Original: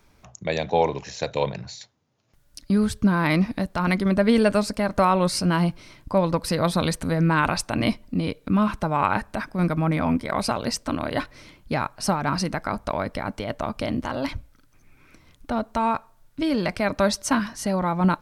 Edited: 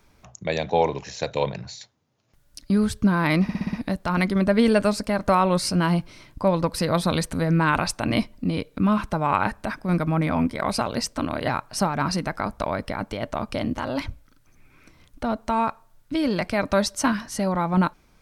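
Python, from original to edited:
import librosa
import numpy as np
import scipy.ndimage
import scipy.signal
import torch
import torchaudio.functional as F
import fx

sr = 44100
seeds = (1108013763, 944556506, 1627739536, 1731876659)

y = fx.edit(x, sr, fx.stutter(start_s=3.43, slice_s=0.06, count=6),
    fx.cut(start_s=11.18, length_s=0.57), tone=tone)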